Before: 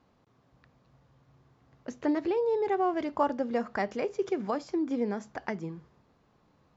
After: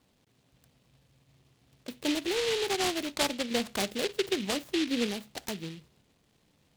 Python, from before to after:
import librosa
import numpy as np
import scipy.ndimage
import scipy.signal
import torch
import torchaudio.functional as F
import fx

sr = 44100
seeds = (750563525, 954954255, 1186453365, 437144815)

y = fx.low_shelf(x, sr, hz=420.0, db=4.0, at=(3.51, 5.07))
y = fx.noise_mod_delay(y, sr, seeds[0], noise_hz=2900.0, depth_ms=0.2)
y = F.gain(torch.from_numpy(y), -2.0).numpy()